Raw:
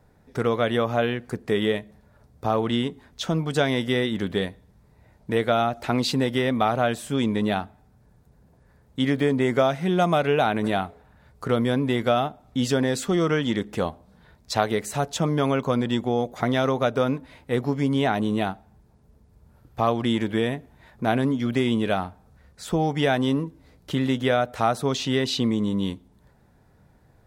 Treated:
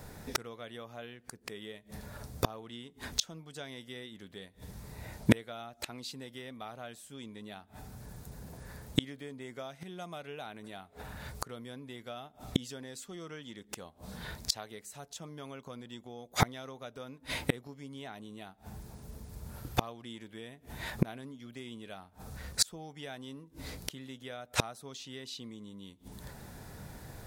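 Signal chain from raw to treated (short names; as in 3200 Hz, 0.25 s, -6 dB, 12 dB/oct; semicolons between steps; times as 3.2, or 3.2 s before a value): high shelf 3000 Hz +12 dB; flipped gate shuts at -21 dBFS, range -33 dB; gain +9.5 dB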